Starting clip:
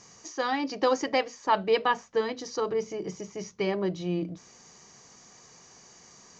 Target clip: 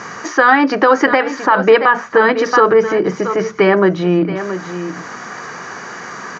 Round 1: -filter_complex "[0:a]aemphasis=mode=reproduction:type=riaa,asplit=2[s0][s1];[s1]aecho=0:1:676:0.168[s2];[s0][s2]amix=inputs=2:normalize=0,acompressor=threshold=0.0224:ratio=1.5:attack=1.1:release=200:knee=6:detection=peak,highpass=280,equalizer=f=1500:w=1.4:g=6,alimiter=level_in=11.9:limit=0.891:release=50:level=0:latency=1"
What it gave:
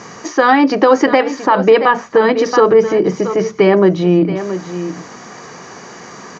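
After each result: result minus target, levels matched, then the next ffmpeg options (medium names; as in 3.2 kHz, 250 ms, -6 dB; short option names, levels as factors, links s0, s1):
2 kHz band -5.0 dB; compression: peak gain reduction -3 dB
-filter_complex "[0:a]aemphasis=mode=reproduction:type=riaa,asplit=2[s0][s1];[s1]aecho=0:1:676:0.168[s2];[s0][s2]amix=inputs=2:normalize=0,acompressor=threshold=0.0224:ratio=1.5:attack=1.1:release=200:knee=6:detection=peak,highpass=280,equalizer=f=1500:w=1.4:g=17,alimiter=level_in=11.9:limit=0.891:release=50:level=0:latency=1"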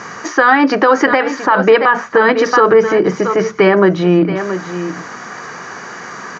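compression: peak gain reduction -3 dB
-filter_complex "[0:a]aemphasis=mode=reproduction:type=riaa,asplit=2[s0][s1];[s1]aecho=0:1:676:0.168[s2];[s0][s2]amix=inputs=2:normalize=0,acompressor=threshold=0.00841:ratio=1.5:attack=1.1:release=200:knee=6:detection=peak,highpass=280,equalizer=f=1500:w=1.4:g=17,alimiter=level_in=11.9:limit=0.891:release=50:level=0:latency=1"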